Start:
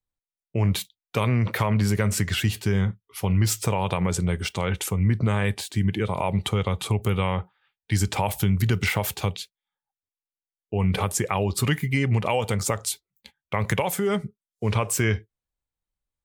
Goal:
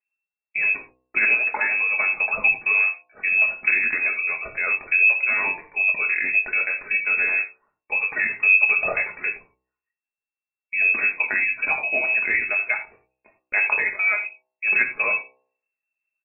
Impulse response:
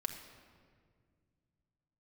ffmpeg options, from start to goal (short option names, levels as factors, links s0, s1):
-filter_complex "[0:a]asplit=2[s0][s1];[s1]adelay=21,volume=0.398[s2];[s0][s2]amix=inputs=2:normalize=0,aphaser=in_gain=1:out_gain=1:delay=3.2:decay=0.43:speed=0.81:type=triangular,lowpass=f=2300:t=q:w=0.5098,lowpass=f=2300:t=q:w=0.6013,lowpass=f=2300:t=q:w=0.9,lowpass=f=2300:t=q:w=2.563,afreqshift=-2700,bandreject=f=63.67:t=h:w=4,bandreject=f=127.34:t=h:w=4,bandreject=f=191.01:t=h:w=4,bandreject=f=254.68:t=h:w=4,bandreject=f=318.35:t=h:w=4,bandreject=f=382.02:t=h:w=4,bandreject=f=445.69:t=h:w=4,bandreject=f=509.36:t=h:w=4,bandreject=f=573.03:t=h:w=4,bandreject=f=636.7:t=h:w=4,bandreject=f=700.37:t=h:w=4,bandreject=f=764.04:t=h:w=4,bandreject=f=827.71:t=h:w=4,bandreject=f=891.38:t=h:w=4,bandreject=f=955.05:t=h:w=4,bandreject=f=1018.72:t=h:w=4,bandreject=f=1082.39:t=h:w=4[s3];[1:a]atrim=start_sample=2205,atrim=end_sample=4410[s4];[s3][s4]afir=irnorm=-1:irlink=0"